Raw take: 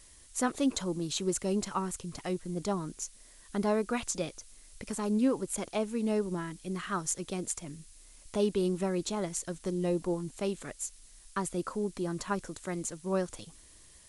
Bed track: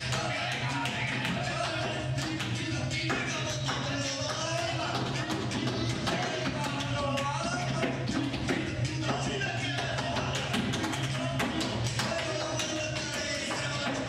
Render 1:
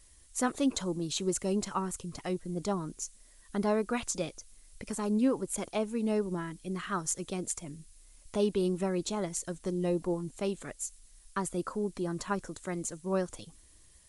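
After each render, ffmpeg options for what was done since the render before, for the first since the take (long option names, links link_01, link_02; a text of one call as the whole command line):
ffmpeg -i in.wav -af "afftdn=noise_reduction=6:noise_floor=-56" out.wav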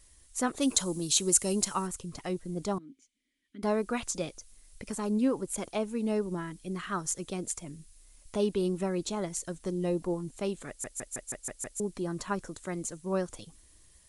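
ffmpeg -i in.wav -filter_complex "[0:a]asplit=3[link_01][link_02][link_03];[link_01]afade=type=out:start_time=0.6:duration=0.02[link_04];[link_02]aemphasis=mode=production:type=75kf,afade=type=in:start_time=0.6:duration=0.02,afade=type=out:start_time=1.86:duration=0.02[link_05];[link_03]afade=type=in:start_time=1.86:duration=0.02[link_06];[link_04][link_05][link_06]amix=inputs=3:normalize=0,asettb=1/sr,asplit=3[link_07][link_08][link_09];[link_07]atrim=end=2.784[link_10];[link_08]atrim=start=2.78:end=3.63,asetpts=PTS-STARTPTS,afade=type=in:duration=0.004:curve=qsin,afade=type=out:start_time=0.846:duration=0.004:curve=qsin,asplit=3[link_11][link_12][link_13];[link_11]bandpass=frequency=270:width_type=q:width=8,volume=0dB[link_14];[link_12]bandpass=frequency=2290:width_type=q:width=8,volume=-6dB[link_15];[link_13]bandpass=frequency=3010:width_type=q:width=8,volume=-9dB[link_16];[link_14][link_15][link_16]amix=inputs=3:normalize=0[link_17];[link_09]atrim=start=3.626[link_18];[link_10][link_17]acrossfade=duration=0.004:curve1=hsin:curve2=qsin[link_19];[link_19][link_18]acrossfade=duration=0.004:curve1=qsin:curve2=hsin,asplit=8[link_20][link_21][link_22][link_23][link_24][link_25][link_26][link_27];[link_20]atrim=end=10.842[link_28];[link_21]atrim=start=10.678:end=10.842[link_29];[link_22]atrim=start=10.678:end=10.842[link_30];[link_23]atrim=start=10.678:end=10.842[link_31];[link_24]atrim=start=10.678:end=10.842[link_32];[link_25]atrim=start=10.678:end=10.842[link_33];[link_26]atrim=start=10.678:end=10.842[link_34];[link_27]atrim=start=11.798[link_35];[link_28][link_29]acrossfade=duration=0.004:curve1=hsin:curve2=hsin[link_36];[link_36][link_30]acrossfade=duration=0.004:curve1=hsin:curve2=hsin[link_37];[link_37][link_31]acrossfade=duration=0.004:curve1=hsin:curve2=hsin[link_38];[link_38][link_32]acrossfade=duration=0.004:curve1=hsin:curve2=hsin[link_39];[link_39][link_33]acrossfade=duration=0.004:curve1=hsin:curve2=hsin[link_40];[link_40][link_34]acrossfade=duration=0.004:curve1=hsin:curve2=hsin[link_41];[link_41][link_35]acrossfade=duration=0.004:curve1=hsin:curve2=hsin" out.wav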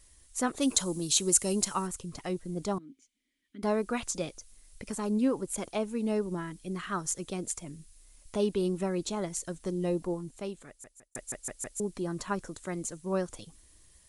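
ffmpeg -i in.wav -filter_complex "[0:a]asplit=2[link_01][link_02];[link_01]atrim=end=11.15,asetpts=PTS-STARTPTS,afade=type=out:start_time=9.95:duration=1.2[link_03];[link_02]atrim=start=11.15,asetpts=PTS-STARTPTS,afade=type=in:duration=0.004:curve=hsin[link_04];[link_03][link_04]concat=n=2:v=0:a=1" out.wav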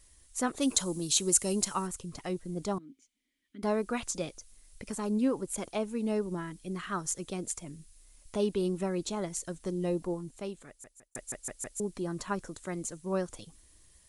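ffmpeg -i in.wav -af "volume=-1dB" out.wav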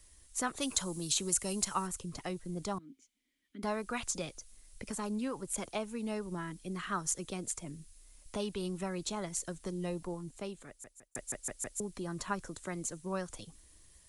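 ffmpeg -i in.wav -filter_complex "[0:a]acrossover=split=160|720|2400[link_01][link_02][link_03][link_04];[link_02]acompressor=threshold=-40dB:ratio=6[link_05];[link_04]alimiter=limit=-18dB:level=0:latency=1:release=192[link_06];[link_01][link_05][link_03][link_06]amix=inputs=4:normalize=0" out.wav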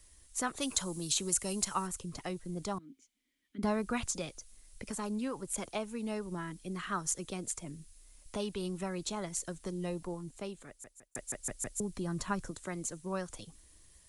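ffmpeg -i in.wav -filter_complex "[0:a]asettb=1/sr,asplit=3[link_01][link_02][link_03];[link_01]atrim=end=3.584[link_04];[link_02]atrim=start=3.58:end=4.06,asetpts=PTS-STARTPTS,afade=type=in:duration=0.004:curve=qsin,afade=type=out:start_time=0.476:duration=0.004:curve=qsin,equalizer=frequency=90:width=0.35:gain=10[link_05];[link_03]atrim=start=4.056[link_06];[link_04][link_05]acrossfade=duration=0.004:curve1=hsin:curve2=qsin[link_07];[link_07][link_06]acrossfade=duration=0.004:curve1=qsin:curve2=hsin,asettb=1/sr,asplit=3[link_08][link_09][link_10];[link_08]atrim=end=11.404[link_11];[link_09]atrim=start=11.4:end=12.51,asetpts=PTS-STARTPTS,afade=type=in:duration=0.004:curve=qsin,afade=type=out:start_time=1.106:duration=0.004:curve=qsin,bass=frequency=250:gain=6,treble=frequency=4000:gain=1[link_12];[link_10]atrim=start=12.506[link_13];[link_11][link_12]acrossfade=duration=0.004:curve1=hsin:curve2=qsin[link_14];[link_14][link_13]acrossfade=duration=0.004:curve1=qsin:curve2=hsin" out.wav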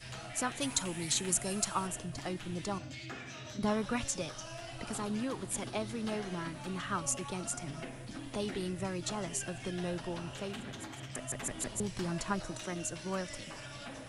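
ffmpeg -i in.wav -i bed.wav -filter_complex "[1:a]volume=-14dB[link_01];[0:a][link_01]amix=inputs=2:normalize=0" out.wav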